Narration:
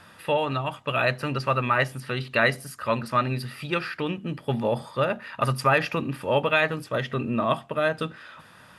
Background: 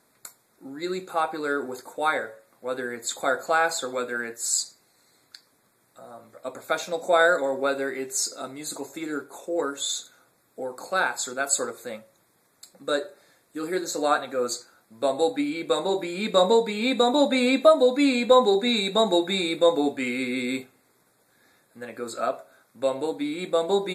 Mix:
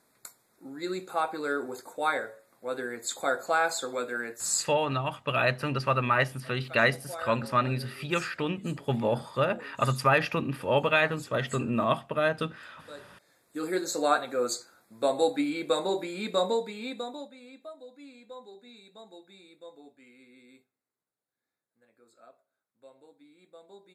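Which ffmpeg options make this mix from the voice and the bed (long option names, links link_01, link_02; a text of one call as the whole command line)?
ffmpeg -i stem1.wav -i stem2.wav -filter_complex "[0:a]adelay=4400,volume=-2dB[link_01];[1:a]volume=14.5dB,afade=type=out:start_time=4.61:duration=0.21:silence=0.149624,afade=type=in:start_time=13.02:duration=0.54:silence=0.125893,afade=type=out:start_time=15.57:duration=1.76:silence=0.0473151[link_02];[link_01][link_02]amix=inputs=2:normalize=0" out.wav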